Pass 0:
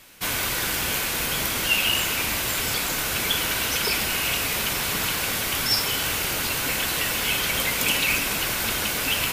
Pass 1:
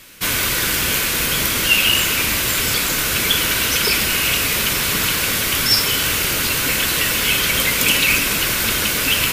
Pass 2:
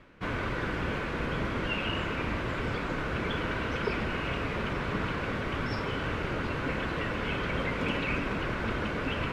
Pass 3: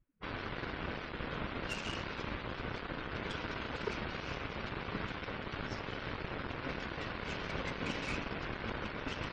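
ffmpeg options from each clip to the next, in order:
-af "equalizer=f=780:t=o:w=0.64:g=-7.5,volume=2.24"
-af "lowpass=1200,areverse,acompressor=mode=upward:threshold=0.02:ratio=2.5,areverse,volume=0.562"
-af "asoftclip=type=tanh:threshold=0.0668,aeval=exprs='0.0668*(cos(1*acos(clip(val(0)/0.0668,-1,1)))-cos(1*PI/2))+0.0211*(cos(3*acos(clip(val(0)/0.0668,-1,1)))-cos(3*PI/2))+0.00473*(cos(7*acos(clip(val(0)/0.0668,-1,1)))-cos(7*PI/2))':c=same,afftdn=nr=27:nf=-50,volume=0.841"

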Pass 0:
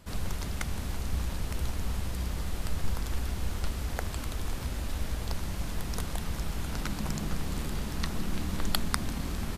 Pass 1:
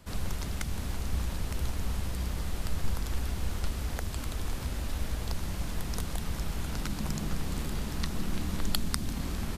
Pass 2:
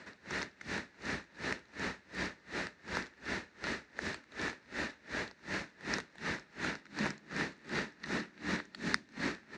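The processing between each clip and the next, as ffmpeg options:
-filter_complex "[0:a]acrossover=split=380|3000[s0][s1][s2];[s1]acompressor=threshold=0.00794:ratio=2[s3];[s0][s3][s2]amix=inputs=3:normalize=0"
-af "highpass=340,equalizer=f=500:t=q:w=4:g=-4,equalizer=f=730:t=q:w=4:g=-8,equalizer=f=1100:t=q:w=4:g=-7,equalizer=f=1800:t=q:w=4:g=9,equalizer=f=3200:t=q:w=4:g=-10,equalizer=f=4900:t=q:w=4:g=-5,lowpass=f=5200:w=0.5412,lowpass=f=5200:w=1.3066,aeval=exprs='val(0)*pow(10,-29*(0.5-0.5*cos(2*PI*2.7*n/s))/20)':c=same,volume=3.35"

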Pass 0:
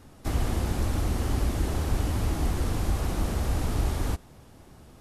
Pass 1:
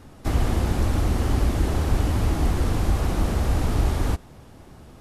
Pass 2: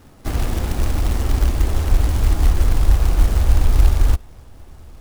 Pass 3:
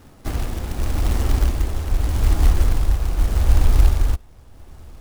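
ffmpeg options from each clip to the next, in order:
-af "highshelf=f=5000:g=-5,volume=1.78"
-af "acrusher=bits=3:mode=log:mix=0:aa=0.000001,asubboost=boost=6:cutoff=69,volume=0.891"
-af "tremolo=f=0.82:d=0.47"

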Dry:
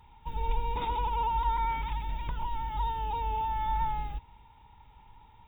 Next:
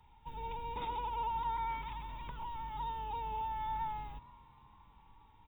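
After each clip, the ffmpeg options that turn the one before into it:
-filter_complex "[0:a]acrossover=split=160|1300[s0][s1][s2];[s0]asoftclip=type=tanh:threshold=0.0133[s3];[s3][s1][s2]amix=inputs=3:normalize=0,asplit=4[s4][s5][s6][s7];[s5]adelay=465,afreqshift=84,volume=0.0708[s8];[s6]adelay=930,afreqshift=168,volume=0.0313[s9];[s7]adelay=1395,afreqshift=252,volume=0.0136[s10];[s4][s8][s9][s10]amix=inputs=4:normalize=0,volume=0.473"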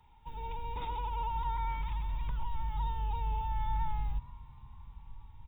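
-af "asubboost=boost=7.5:cutoff=130"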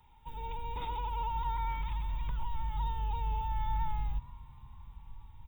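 -af "crystalizer=i=1:c=0"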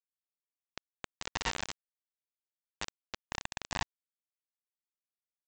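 -af "highpass=78,aresample=16000,acrusher=bits=4:mix=0:aa=0.000001,aresample=44100,volume=1.58"

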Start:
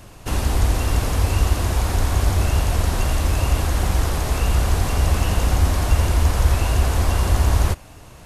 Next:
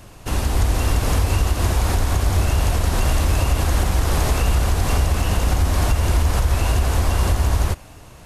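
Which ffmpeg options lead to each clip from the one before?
-af "dynaudnorm=f=140:g=11:m=3.76,alimiter=limit=0.355:level=0:latency=1:release=165"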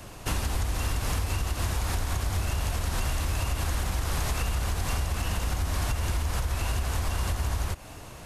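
-filter_complex "[0:a]acrossover=split=210|870[s0][s1][s2];[s1]asoftclip=type=tanh:threshold=0.02[s3];[s0][s3][s2]amix=inputs=3:normalize=0,acompressor=threshold=0.0708:ratio=6,lowshelf=f=190:g=-3.5,volume=1.12"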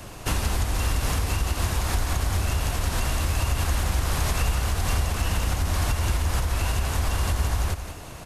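-af "aecho=1:1:180:0.335,volume=1.5"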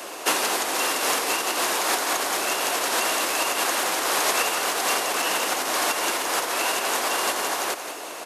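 -af "highpass=f=340:w=0.5412,highpass=f=340:w=1.3066,volume=2.51"

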